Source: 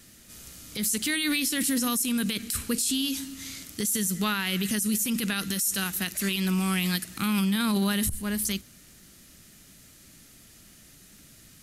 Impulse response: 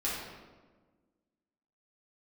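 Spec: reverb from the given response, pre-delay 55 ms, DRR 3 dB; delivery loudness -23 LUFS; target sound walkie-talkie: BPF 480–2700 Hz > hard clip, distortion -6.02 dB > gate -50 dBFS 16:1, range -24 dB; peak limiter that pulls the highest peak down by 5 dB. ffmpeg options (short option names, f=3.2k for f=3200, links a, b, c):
-filter_complex "[0:a]alimiter=limit=-20dB:level=0:latency=1,asplit=2[a][b];[1:a]atrim=start_sample=2205,adelay=55[c];[b][c]afir=irnorm=-1:irlink=0,volume=-9.5dB[d];[a][d]amix=inputs=2:normalize=0,highpass=480,lowpass=2.7k,asoftclip=type=hard:threshold=-38dB,agate=range=-24dB:threshold=-50dB:ratio=16,volume=17.5dB"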